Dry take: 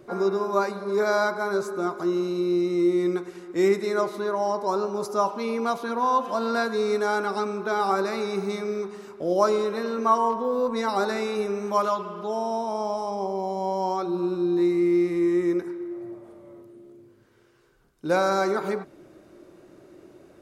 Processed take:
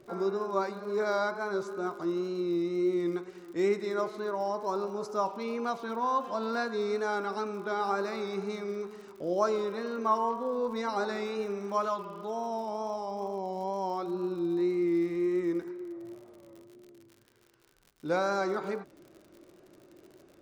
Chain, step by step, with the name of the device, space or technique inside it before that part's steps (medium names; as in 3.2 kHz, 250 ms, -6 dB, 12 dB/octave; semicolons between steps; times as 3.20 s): lo-fi chain (low-pass 6.7 kHz 12 dB/octave; wow and flutter; crackle 76 per s -38 dBFS); trim -6.5 dB